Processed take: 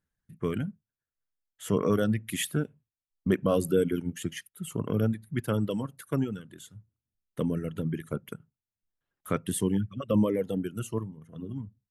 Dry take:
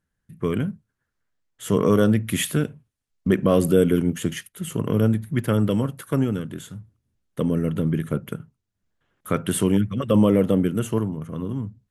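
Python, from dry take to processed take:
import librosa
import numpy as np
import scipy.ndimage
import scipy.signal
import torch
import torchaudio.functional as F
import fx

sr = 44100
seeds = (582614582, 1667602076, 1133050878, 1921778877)

y = fx.dereverb_blind(x, sr, rt60_s=2.0)
y = fx.notch_cascade(y, sr, direction='falling', hz=1.3, at=(9.39, 11.58))
y = y * librosa.db_to_amplitude(-5.5)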